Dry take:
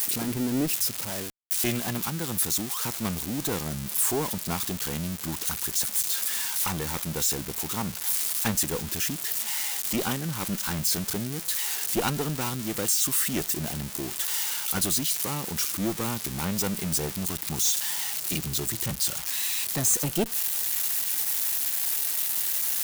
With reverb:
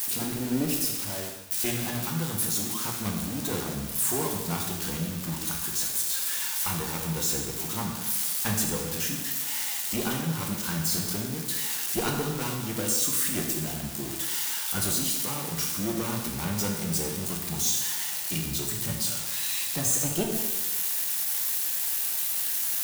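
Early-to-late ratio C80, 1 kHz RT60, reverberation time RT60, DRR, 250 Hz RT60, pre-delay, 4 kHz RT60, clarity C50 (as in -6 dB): 5.0 dB, 1.2 s, 1.2 s, 0.0 dB, 1.2 s, 4 ms, 1.1 s, 3.5 dB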